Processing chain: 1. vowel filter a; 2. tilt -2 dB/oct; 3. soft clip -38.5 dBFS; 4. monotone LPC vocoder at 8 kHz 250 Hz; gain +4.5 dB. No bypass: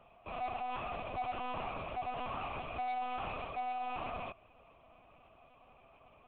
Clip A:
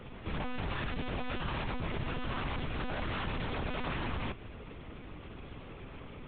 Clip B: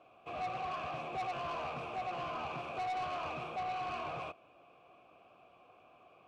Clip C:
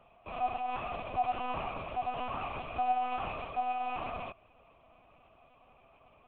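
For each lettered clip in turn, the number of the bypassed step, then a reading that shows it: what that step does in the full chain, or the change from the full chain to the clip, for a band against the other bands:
1, 1 kHz band -13.0 dB; 4, 4 kHz band +2.0 dB; 3, distortion -9 dB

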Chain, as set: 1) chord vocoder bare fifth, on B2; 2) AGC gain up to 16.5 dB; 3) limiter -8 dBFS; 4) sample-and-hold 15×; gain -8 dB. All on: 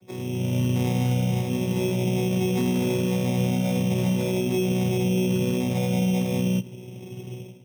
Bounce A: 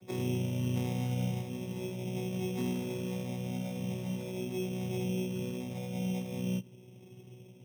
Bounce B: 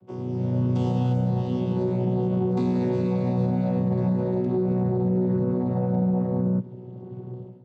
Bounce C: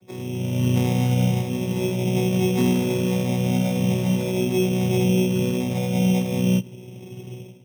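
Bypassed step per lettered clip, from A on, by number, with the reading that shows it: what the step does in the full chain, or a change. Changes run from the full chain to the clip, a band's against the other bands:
2, crest factor change +5.0 dB; 4, distortion -10 dB; 3, crest factor change +3.5 dB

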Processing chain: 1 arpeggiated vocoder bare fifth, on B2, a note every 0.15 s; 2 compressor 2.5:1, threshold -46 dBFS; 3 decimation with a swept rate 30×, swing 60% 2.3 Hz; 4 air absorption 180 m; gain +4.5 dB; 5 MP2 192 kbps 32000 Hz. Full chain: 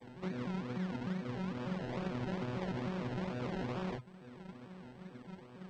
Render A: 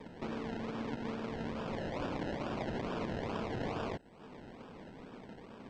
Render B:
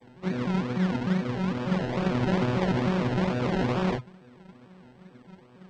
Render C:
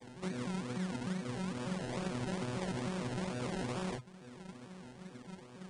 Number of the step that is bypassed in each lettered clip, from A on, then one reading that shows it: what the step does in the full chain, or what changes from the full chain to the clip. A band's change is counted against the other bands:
1, 125 Hz band -6.0 dB; 2, mean gain reduction 8.0 dB; 4, 4 kHz band +4.0 dB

